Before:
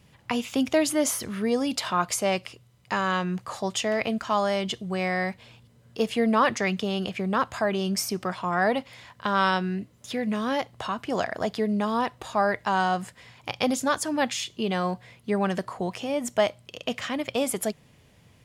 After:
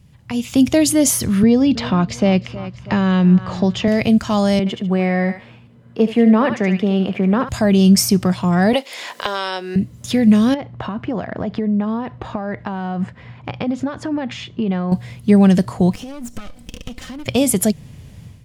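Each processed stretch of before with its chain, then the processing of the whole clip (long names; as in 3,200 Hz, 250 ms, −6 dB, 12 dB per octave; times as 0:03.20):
0:01.43–0:03.88: high-frequency loss of the air 210 metres + repeating echo 320 ms, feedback 38%, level −19.5 dB + multiband upward and downward compressor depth 40%
0:04.59–0:07.49: three-way crossover with the lows and the highs turned down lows −17 dB, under 190 Hz, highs −19 dB, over 2,500 Hz + feedback echo with a high-pass in the loop 73 ms, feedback 27%, high-pass 990 Hz, level −6 dB
0:08.73–0:09.76: high-pass filter 390 Hz 24 dB per octave + multiband upward and downward compressor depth 100%
0:10.54–0:14.92: low-pass filter 2,000 Hz + downward compressor, threshold −30 dBFS + low-shelf EQ 87 Hz −9.5 dB
0:15.94–0:17.26: lower of the sound and its delayed copy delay 3.9 ms + downward compressor 16 to 1, threshold −41 dBFS
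whole clip: dynamic equaliser 1,200 Hz, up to −8 dB, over −39 dBFS, Q 1.1; automatic gain control gain up to 11.5 dB; bass and treble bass +14 dB, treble +4 dB; level −3 dB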